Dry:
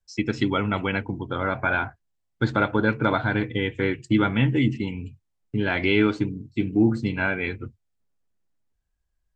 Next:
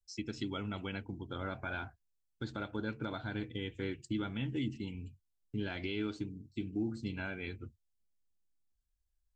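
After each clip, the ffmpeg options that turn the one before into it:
-af "equalizer=f=125:t=o:w=1:g=-8,equalizer=f=250:t=o:w=1:g=-4,equalizer=f=500:t=o:w=1:g=-7,equalizer=f=1000:t=o:w=1:g=-9,equalizer=f=2000:t=o:w=1:g=-10,alimiter=limit=0.0794:level=0:latency=1:release=319,volume=0.596"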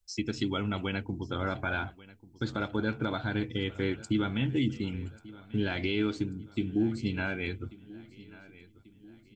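-af "aecho=1:1:1139|2278|3417|4556:0.1|0.049|0.024|0.0118,volume=2.37"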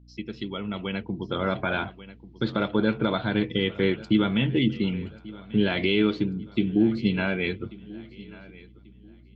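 -af "highpass=170,equalizer=f=190:t=q:w=4:g=4,equalizer=f=280:t=q:w=4:g=-8,equalizer=f=800:t=q:w=4:g=-6,equalizer=f=1500:t=q:w=4:g=-7,equalizer=f=2400:t=q:w=4:g=-3,lowpass=f=3800:w=0.5412,lowpass=f=3800:w=1.3066,dynaudnorm=f=310:g=7:m=3.16,aeval=exprs='val(0)+0.00282*(sin(2*PI*60*n/s)+sin(2*PI*2*60*n/s)/2+sin(2*PI*3*60*n/s)/3+sin(2*PI*4*60*n/s)/4+sin(2*PI*5*60*n/s)/5)':c=same"

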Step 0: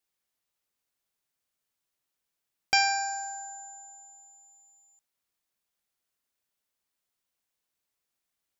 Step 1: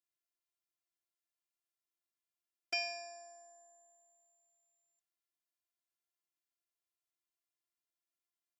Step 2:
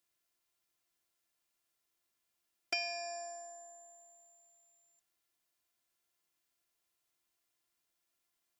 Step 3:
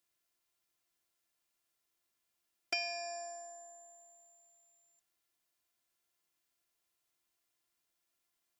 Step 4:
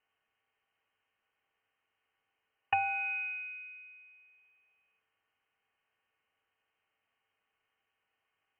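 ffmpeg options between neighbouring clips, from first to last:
-af "afftfilt=real='hypot(re,im)*cos(PI*b)':imag='0':win_size=512:overlap=0.75,highpass=140,volume=0.355"
-af "acompressor=threshold=0.00447:ratio=2.5,volume=3.16"
-af anull
-af "lowpass=f=2700:t=q:w=0.5098,lowpass=f=2700:t=q:w=0.6013,lowpass=f=2700:t=q:w=0.9,lowpass=f=2700:t=q:w=2.563,afreqshift=-3200,volume=2.66"

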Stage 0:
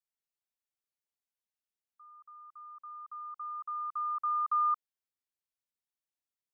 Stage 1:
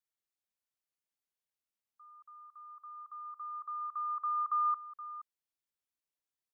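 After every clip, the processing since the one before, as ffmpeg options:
-filter_complex "[0:a]asplit=2[s0][s1];[s1]adelay=472.3,volume=0.2,highshelf=f=4000:g=-10.6[s2];[s0][s2]amix=inputs=2:normalize=0,volume=0.841"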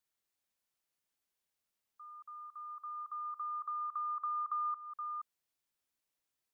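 -af "acompressor=threshold=0.00708:ratio=3,volume=1.78"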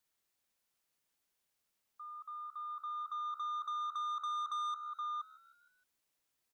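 -filter_complex "[0:a]asoftclip=type=tanh:threshold=0.0112,asplit=5[s0][s1][s2][s3][s4];[s1]adelay=155,afreqshift=69,volume=0.0944[s5];[s2]adelay=310,afreqshift=138,volume=0.0501[s6];[s3]adelay=465,afreqshift=207,volume=0.0266[s7];[s4]adelay=620,afreqshift=276,volume=0.0141[s8];[s0][s5][s6][s7][s8]amix=inputs=5:normalize=0,volume=1.58"

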